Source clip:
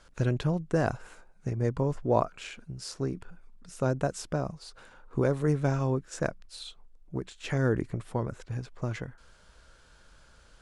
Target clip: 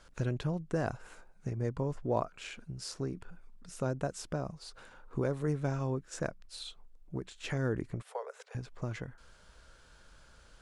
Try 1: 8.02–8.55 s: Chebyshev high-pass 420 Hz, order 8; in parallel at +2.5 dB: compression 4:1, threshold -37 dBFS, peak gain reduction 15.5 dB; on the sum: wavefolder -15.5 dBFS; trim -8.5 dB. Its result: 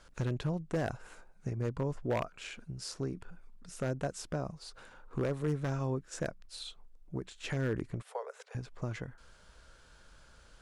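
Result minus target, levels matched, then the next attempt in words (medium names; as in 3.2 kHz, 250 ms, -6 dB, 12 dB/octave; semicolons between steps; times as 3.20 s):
wavefolder: distortion +38 dB
8.02–8.55 s: Chebyshev high-pass 420 Hz, order 8; in parallel at +2.5 dB: compression 4:1, threshold -37 dBFS, peak gain reduction 15.5 dB; on the sum: wavefolder -9 dBFS; trim -8.5 dB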